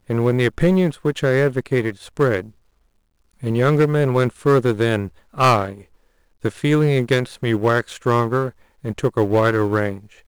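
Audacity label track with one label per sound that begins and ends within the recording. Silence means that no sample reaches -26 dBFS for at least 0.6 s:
3.430000	5.730000	sound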